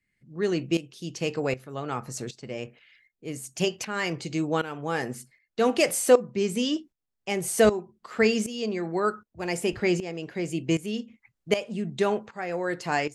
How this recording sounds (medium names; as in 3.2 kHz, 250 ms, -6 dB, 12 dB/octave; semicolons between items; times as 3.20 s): tremolo saw up 1.3 Hz, depth 80%